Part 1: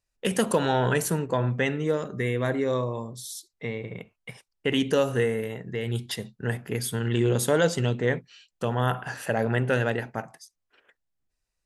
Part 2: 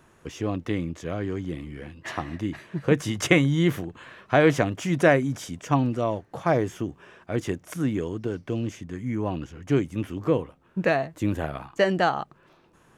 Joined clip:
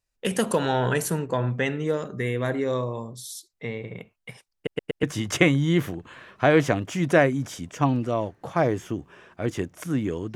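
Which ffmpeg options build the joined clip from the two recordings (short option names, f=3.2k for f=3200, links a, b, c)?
-filter_complex "[0:a]apad=whole_dur=10.35,atrim=end=10.35,asplit=4[a][b][c][d];[a]atrim=end=4.672[e];[b]atrim=start=4.548:end=4.672[f];[c]atrim=start=4.548:end=4.672[g];[d]atrim=start=4.548:end=4.672[h];[1:a]atrim=start=2.928:end=8.25[i];[e][f]acrossfade=d=0.004:c1=hsin:c2=hsin[j];[j][g]acrossfade=d=0.004:c1=hsin:c2=hsin[k];[k][h]acrossfade=d=0.004:c1=hsin:c2=hsin[l];[l][i]acrossfade=d=0.004:c1=hsin:c2=hsin"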